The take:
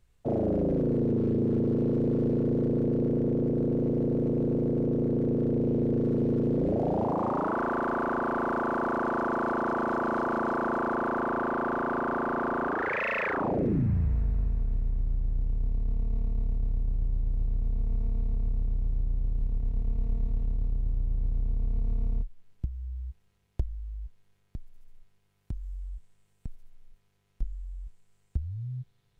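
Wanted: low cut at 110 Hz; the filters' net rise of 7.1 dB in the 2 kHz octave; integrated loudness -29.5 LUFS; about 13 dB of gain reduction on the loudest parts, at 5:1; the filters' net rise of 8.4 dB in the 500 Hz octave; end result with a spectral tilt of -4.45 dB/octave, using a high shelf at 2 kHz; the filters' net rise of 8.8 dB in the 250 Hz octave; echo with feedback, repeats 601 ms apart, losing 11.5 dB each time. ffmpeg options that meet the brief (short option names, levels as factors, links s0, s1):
-af "highpass=110,equalizer=f=250:t=o:g=8.5,equalizer=f=500:t=o:g=7,highshelf=f=2000:g=6.5,equalizer=f=2000:t=o:g=5.5,acompressor=threshold=0.0282:ratio=5,aecho=1:1:601|1202|1803:0.266|0.0718|0.0194,volume=1.68"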